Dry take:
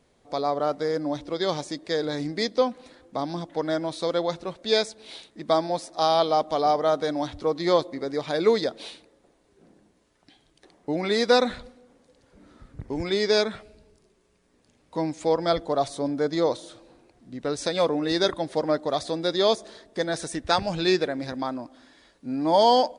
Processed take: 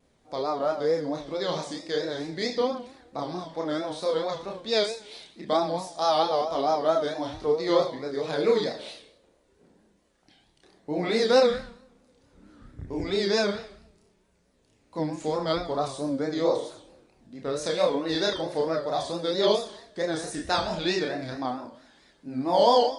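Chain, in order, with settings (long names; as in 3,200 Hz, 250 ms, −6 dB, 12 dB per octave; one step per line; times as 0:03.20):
four-comb reverb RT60 0.56 s, combs from 30 ms, DRR 5.5 dB
multi-voice chorus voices 2, 0.18 Hz, delay 30 ms, depth 2.3 ms
pitch vibrato 4.5 Hz 98 cents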